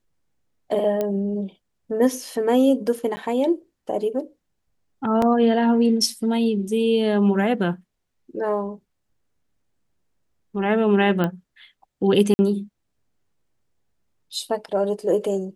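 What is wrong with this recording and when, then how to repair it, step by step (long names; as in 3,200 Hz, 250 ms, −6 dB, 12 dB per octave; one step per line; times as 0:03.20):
0:01.01: click −12 dBFS
0:03.16–0:03.17: drop-out 10 ms
0:05.22: drop-out 2.9 ms
0:11.24: click −12 dBFS
0:12.34–0:12.39: drop-out 50 ms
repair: click removal
repair the gap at 0:03.16, 10 ms
repair the gap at 0:05.22, 2.9 ms
repair the gap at 0:12.34, 50 ms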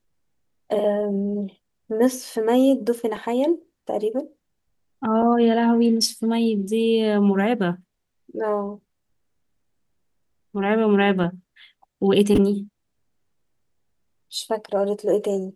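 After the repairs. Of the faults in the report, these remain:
none of them is left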